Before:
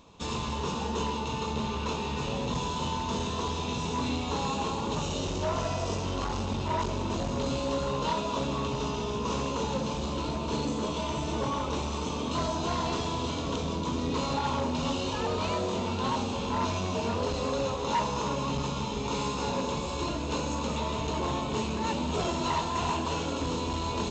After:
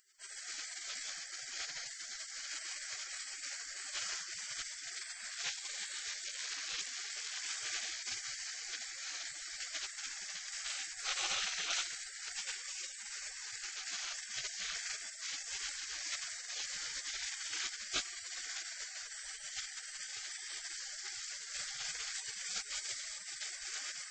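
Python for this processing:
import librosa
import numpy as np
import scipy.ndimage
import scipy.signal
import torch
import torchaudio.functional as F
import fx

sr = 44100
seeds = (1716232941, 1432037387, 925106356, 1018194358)

y = fx.peak_eq(x, sr, hz=69.0, db=10.0, octaves=2.1, at=(11.04, 11.81), fade=0.02)
y = fx.spec_gate(y, sr, threshold_db=-30, keep='weak')
y = F.gain(torch.from_numpy(y), 9.0).numpy()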